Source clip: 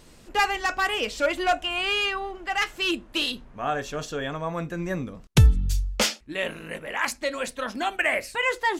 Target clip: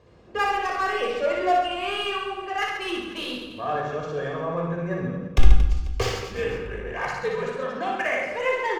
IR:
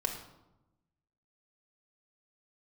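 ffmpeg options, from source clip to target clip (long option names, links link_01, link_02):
-filter_complex "[0:a]highpass=frequency=67:width=0.5412,highpass=frequency=67:width=1.3066,highshelf=frequency=3000:gain=-7,adynamicsmooth=sensitivity=3.5:basefreq=4000,asettb=1/sr,asplit=3[link_01][link_02][link_03];[link_01]atrim=end=5.274[link_04];[link_02]atrim=start=5.27:end=7.43,asetpts=PTS-STARTPTS,afade=type=in:duration=0.004:curve=qsin,afade=type=out:start_time=2.156:duration=0.004:curve=qsin,afreqshift=-110[link_05];[link_03]atrim=start=7.426[link_06];[link_04][link_05]acrossfade=duration=0.004:curve1=hsin:curve2=qsin[link_07];[link_07][link_06]acrossfade=duration=0.004:curve1=qsin:curve2=hsin,aecho=1:1:60|135|228.8|345.9|492.4:0.631|0.398|0.251|0.158|0.1[link_08];[1:a]atrim=start_sample=2205,asetrate=48510,aresample=44100[link_09];[link_08][link_09]afir=irnorm=-1:irlink=0,volume=-4dB"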